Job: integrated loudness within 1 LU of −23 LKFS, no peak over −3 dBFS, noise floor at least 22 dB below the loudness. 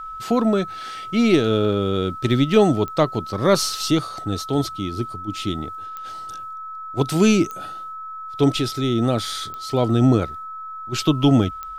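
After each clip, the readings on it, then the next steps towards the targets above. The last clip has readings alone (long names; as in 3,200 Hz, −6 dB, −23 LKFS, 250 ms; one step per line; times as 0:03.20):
number of clicks 5; interfering tone 1,300 Hz; level of the tone −31 dBFS; integrated loudness −20.5 LKFS; sample peak −4.0 dBFS; target loudness −23.0 LKFS
→ click removal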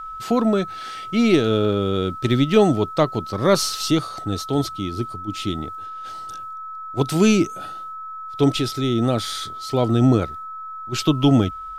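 number of clicks 0; interfering tone 1,300 Hz; level of the tone −31 dBFS
→ notch filter 1,300 Hz, Q 30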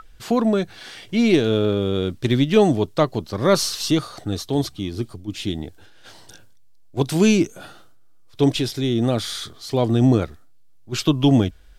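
interfering tone none found; integrated loudness −20.5 LKFS; sample peak −4.5 dBFS; target loudness −23.0 LKFS
→ level −2.5 dB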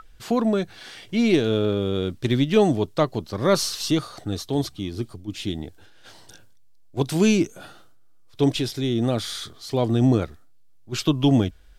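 integrated loudness −23.0 LKFS; sample peak −7.0 dBFS; background noise floor −48 dBFS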